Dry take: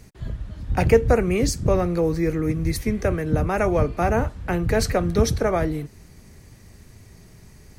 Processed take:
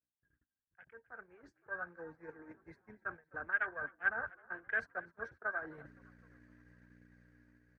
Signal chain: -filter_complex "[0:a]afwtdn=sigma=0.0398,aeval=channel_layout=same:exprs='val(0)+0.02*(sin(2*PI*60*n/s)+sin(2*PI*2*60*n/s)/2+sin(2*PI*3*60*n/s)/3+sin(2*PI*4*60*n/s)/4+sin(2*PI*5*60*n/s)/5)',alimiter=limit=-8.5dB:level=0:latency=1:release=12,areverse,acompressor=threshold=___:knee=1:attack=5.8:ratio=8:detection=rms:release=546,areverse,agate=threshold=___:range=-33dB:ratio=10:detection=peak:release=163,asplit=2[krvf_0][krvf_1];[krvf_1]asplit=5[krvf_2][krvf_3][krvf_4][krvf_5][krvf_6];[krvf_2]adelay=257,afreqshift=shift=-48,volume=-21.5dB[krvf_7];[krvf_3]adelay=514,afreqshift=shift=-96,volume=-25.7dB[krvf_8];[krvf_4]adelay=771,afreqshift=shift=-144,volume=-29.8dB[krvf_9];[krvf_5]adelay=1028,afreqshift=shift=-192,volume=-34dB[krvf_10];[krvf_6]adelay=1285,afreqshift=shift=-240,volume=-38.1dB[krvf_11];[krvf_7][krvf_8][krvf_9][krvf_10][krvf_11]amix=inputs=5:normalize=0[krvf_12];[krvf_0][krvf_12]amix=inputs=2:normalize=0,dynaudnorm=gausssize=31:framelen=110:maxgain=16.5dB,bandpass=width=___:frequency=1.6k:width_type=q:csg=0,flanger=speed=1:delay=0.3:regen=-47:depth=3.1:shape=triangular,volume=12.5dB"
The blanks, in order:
-31dB, -35dB, 16